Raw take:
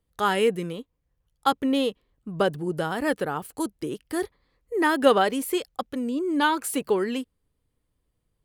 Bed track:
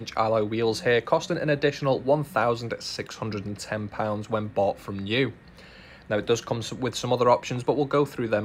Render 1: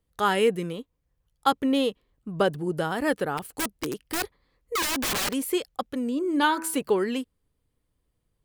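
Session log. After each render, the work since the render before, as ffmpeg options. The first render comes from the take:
ffmpeg -i in.wav -filter_complex "[0:a]asplit=3[link_01][link_02][link_03];[link_01]afade=type=out:start_time=3.37:duration=0.02[link_04];[link_02]aeval=exprs='(mod(12.6*val(0)+1,2)-1)/12.6':channel_layout=same,afade=type=in:start_time=3.37:duration=0.02,afade=type=out:start_time=5.32:duration=0.02[link_05];[link_03]afade=type=in:start_time=5.32:duration=0.02[link_06];[link_04][link_05][link_06]amix=inputs=3:normalize=0,asplit=3[link_07][link_08][link_09];[link_07]afade=type=out:start_time=6.04:duration=0.02[link_10];[link_08]bandreject=frequency=108.2:width_type=h:width=4,bandreject=frequency=216.4:width_type=h:width=4,bandreject=frequency=324.6:width_type=h:width=4,bandreject=frequency=432.8:width_type=h:width=4,bandreject=frequency=541:width_type=h:width=4,bandreject=frequency=649.2:width_type=h:width=4,bandreject=frequency=757.4:width_type=h:width=4,bandreject=frequency=865.6:width_type=h:width=4,bandreject=frequency=973.8:width_type=h:width=4,bandreject=frequency=1082:width_type=h:width=4,bandreject=frequency=1190.2:width_type=h:width=4,bandreject=frequency=1298.4:width_type=h:width=4,bandreject=frequency=1406.6:width_type=h:width=4,bandreject=frequency=1514.8:width_type=h:width=4,bandreject=frequency=1623:width_type=h:width=4,bandreject=frequency=1731.2:width_type=h:width=4,bandreject=frequency=1839.4:width_type=h:width=4,bandreject=frequency=1947.6:width_type=h:width=4,bandreject=frequency=2055.8:width_type=h:width=4,bandreject=frequency=2164:width_type=h:width=4,afade=type=in:start_time=6.04:duration=0.02,afade=type=out:start_time=6.75:duration=0.02[link_11];[link_09]afade=type=in:start_time=6.75:duration=0.02[link_12];[link_10][link_11][link_12]amix=inputs=3:normalize=0" out.wav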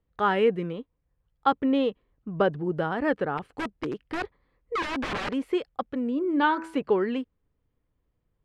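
ffmpeg -i in.wav -af "lowpass=2300" out.wav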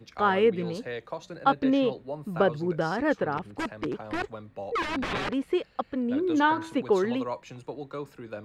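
ffmpeg -i in.wav -i bed.wav -filter_complex "[1:a]volume=-14dB[link_01];[0:a][link_01]amix=inputs=2:normalize=0" out.wav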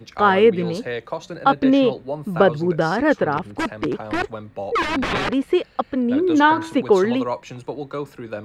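ffmpeg -i in.wav -af "volume=8dB,alimiter=limit=-3dB:level=0:latency=1" out.wav

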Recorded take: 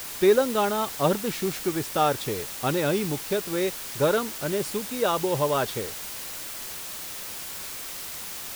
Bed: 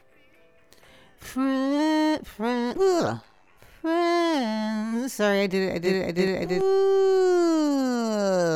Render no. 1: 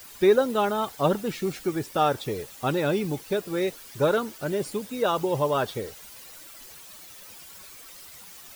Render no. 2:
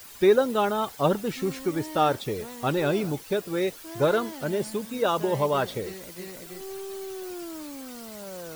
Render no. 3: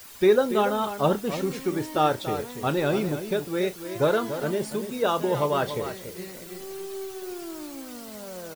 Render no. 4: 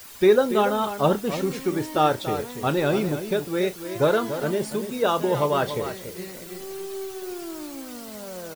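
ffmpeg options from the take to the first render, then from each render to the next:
ffmpeg -i in.wav -af "afftdn=noise_reduction=12:noise_floor=-37" out.wav
ffmpeg -i in.wav -i bed.wav -filter_complex "[1:a]volume=-17dB[link_01];[0:a][link_01]amix=inputs=2:normalize=0" out.wav
ffmpeg -i in.wav -filter_complex "[0:a]asplit=2[link_01][link_02];[link_02]adelay=33,volume=-13.5dB[link_03];[link_01][link_03]amix=inputs=2:normalize=0,asplit=2[link_04][link_05];[link_05]adelay=285.7,volume=-10dB,highshelf=frequency=4000:gain=-6.43[link_06];[link_04][link_06]amix=inputs=2:normalize=0" out.wav
ffmpeg -i in.wav -af "volume=2dB" out.wav

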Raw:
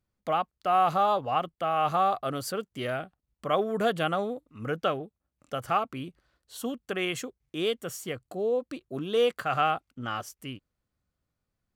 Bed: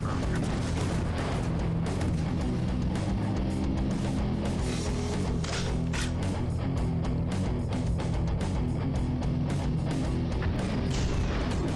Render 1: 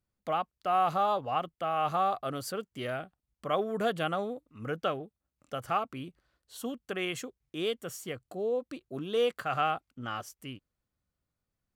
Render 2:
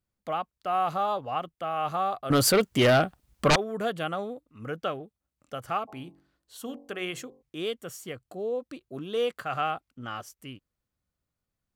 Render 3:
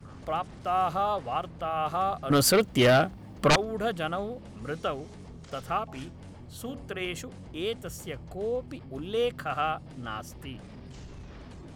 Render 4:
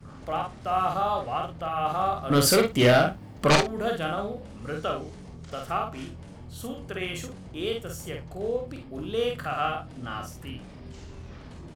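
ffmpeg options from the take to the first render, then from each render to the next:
ffmpeg -i in.wav -af "volume=-3.5dB" out.wav
ffmpeg -i in.wav -filter_complex "[0:a]asettb=1/sr,asplit=3[link_01][link_02][link_03];[link_01]atrim=end=2.304[link_04];[link_02]atrim=start=2.3:end=3.56,asetpts=PTS-STARTPTS,afade=type=in:duration=0.004:curve=qsin,afade=type=out:start_time=1.256:duration=0.004:curve=qsin,aeval=exprs='0.168*sin(PI/2*5.01*val(0)/0.168)':channel_layout=same[link_05];[link_03]atrim=start=3.556[link_06];[link_04][link_05]acrossfade=duration=0.004:curve1=hsin:curve2=qsin[link_07];[link_07][link_06]acrossfade=duration=0.004:curve1=qsin:curve2=hsin,asplit=3[link_08][link_09][link_10];[link_08]afade=type=out:start_time=5.87:duration=0.02[link_11];[link_09]bandreject=frequency=47.07:width_type=h:width=4,bandreject=frequency=94.14:width_type=h:width=4,bandreject=frequency=141.21:width_type=h:width=4,bandreject=frequency=188.28:width_type=h:width=4,bandreject=frequency=235.35:width_type=h:width=4,bandreject=frequency=282.42:width_type=h:width=4,bandreject=frequency=329.49:width_type=h:width=4,bandreject=frequency=376.56:width_type=h:width=4,bandreject=frequency=423.63:width_type=h:width=4,bandreject=frequency=470.7:width_type=h:width=4,bandreject=frequency=517.77:width_type=h:width=4,bandreject=frequency=564.84:width_type=h:width=4,bandreject=frequency=611.91:width_type=h:width=4,bandreject=frequency=658.98:width_type=h:width=4,bandreject=frequency=706.05:width_type=h:width=4,bandreject=frequency=753.12:width_type=h:width=4,bandreject=frequency=800.19:width_type=h:width=4,bandreject=frequency=847.26:width_type=h:width=4,bandreject=frequency=894.33:width_type=h:width=4,bandreject=frequency=941.4:width_type=h:width=4,bandreject=frequency=988.47:width_type=h:width=4,bandreject=frequency=1035.54:width_type=h:width=4,bandreject=frequency=1082.61:width_type=h:width=4,afade=type=in:start_time=5.87:duration=0.02,afade=type=out:start_time=7.41:duration=0.02[link_12];[link_10]afade=type=in:start_time=7.41:duration=0.02[link_13];[link_11][link_12][link_13]amix=inputs=3:normalize=0" out.wav
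ffmpeg -i in.wav -i bed.wav -filter_complex "[1:a]volume=-16.5dB[link_01];[0:a][link_01]amix=inputs=2:normalize=0" out.wav
ffmpeg -i in.wav -filter_complex "[0:a]asplit=2[link_01][link_02];[link_02]adelay=49,volume=-4dB[link_03];[link_01][link_03]amix=inputs=2:normalize=0,asplit=2[link_04][link_05];[link_05]aecho=0:1:26|62:0.251|0.133[link_06];[link_04][link_06]amix=inputs=2:normalize=0" out.wav

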